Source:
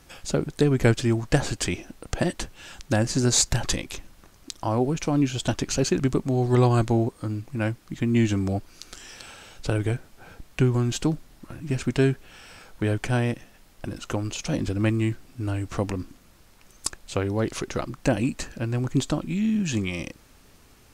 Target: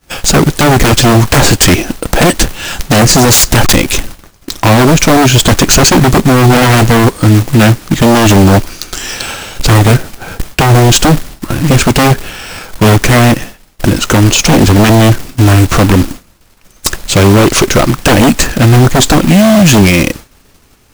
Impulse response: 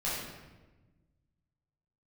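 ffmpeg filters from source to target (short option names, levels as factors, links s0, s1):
-af "acrusher=bits=2:mode=log:mix=0:aa=0.000001,agate=range=0.0224:threshold=0.01:ratio=3:detection=peak,aeval=exprs='0.668*sin(PI/2*8.91*val(0)/0.668)':c=same,volume=1.33"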